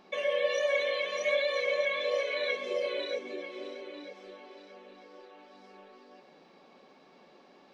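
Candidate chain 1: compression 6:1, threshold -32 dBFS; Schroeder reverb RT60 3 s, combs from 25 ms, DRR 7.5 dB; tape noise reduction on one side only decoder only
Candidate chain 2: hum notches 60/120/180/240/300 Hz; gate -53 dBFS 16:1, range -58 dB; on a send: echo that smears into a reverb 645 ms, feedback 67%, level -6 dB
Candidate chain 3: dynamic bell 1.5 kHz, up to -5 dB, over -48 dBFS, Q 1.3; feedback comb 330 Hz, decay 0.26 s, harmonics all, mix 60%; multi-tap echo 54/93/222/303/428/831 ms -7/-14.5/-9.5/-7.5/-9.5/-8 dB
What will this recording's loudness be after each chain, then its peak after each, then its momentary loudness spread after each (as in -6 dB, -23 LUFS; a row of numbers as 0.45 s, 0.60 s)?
-35.0 LUFS, -30.5 LUFS, -37.0 LUFS; -22.5 dBFS, -16.5 dBFS, -22.0 dBFS; 20 LU, 19 LU, 19 LU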